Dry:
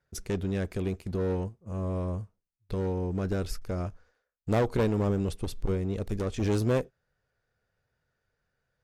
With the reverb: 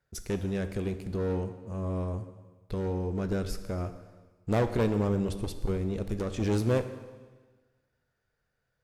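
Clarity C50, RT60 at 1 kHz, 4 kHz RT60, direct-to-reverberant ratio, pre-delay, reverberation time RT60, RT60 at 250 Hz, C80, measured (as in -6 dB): 11.0 dB, 1.4 s, 1.3 s, 9.0 dB, 6 ms, 1.4 s, 1.4 s, 12.5 dB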